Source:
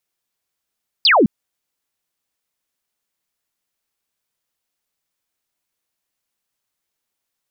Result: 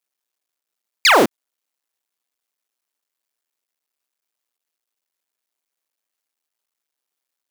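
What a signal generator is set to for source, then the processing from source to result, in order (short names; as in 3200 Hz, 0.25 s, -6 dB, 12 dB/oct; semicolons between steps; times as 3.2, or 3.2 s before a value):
laser zap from 5100 Hz, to 180 Hz, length 0.21 s sine, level -9 dB
cycle switcher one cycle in 2, muted; HPF 280 Hz 12 dB/oct; in parallel at -4.5 dB: companded quantiser 4-bit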